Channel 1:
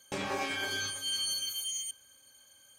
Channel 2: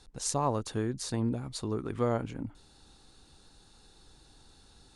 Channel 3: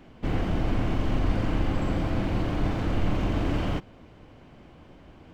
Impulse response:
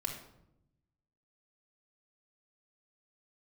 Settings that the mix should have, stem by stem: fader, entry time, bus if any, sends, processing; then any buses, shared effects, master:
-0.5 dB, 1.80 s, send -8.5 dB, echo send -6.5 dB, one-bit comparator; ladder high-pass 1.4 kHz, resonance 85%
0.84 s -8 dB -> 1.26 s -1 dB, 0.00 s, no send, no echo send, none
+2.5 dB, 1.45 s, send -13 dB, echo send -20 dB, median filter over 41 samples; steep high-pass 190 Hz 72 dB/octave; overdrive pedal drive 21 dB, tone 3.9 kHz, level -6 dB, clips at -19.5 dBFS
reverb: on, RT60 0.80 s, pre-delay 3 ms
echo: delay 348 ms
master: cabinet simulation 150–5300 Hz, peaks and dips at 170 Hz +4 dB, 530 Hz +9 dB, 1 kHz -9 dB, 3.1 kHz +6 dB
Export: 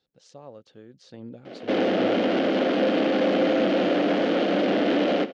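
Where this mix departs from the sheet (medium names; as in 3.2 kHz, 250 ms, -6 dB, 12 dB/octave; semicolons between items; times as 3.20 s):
stem 1 -0.5 dB -> -9.0 dB; stem 2 -8.0 dB -> -16.0 dB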